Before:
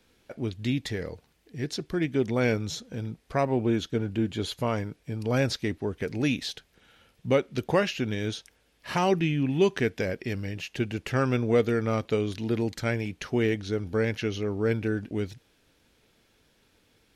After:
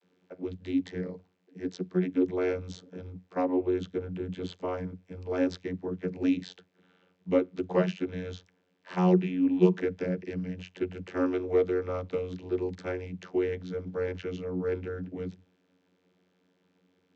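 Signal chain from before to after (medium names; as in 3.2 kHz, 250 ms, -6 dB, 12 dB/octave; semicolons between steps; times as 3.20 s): vocoder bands 32, saw 91.1 Hz; trim -1.5 dB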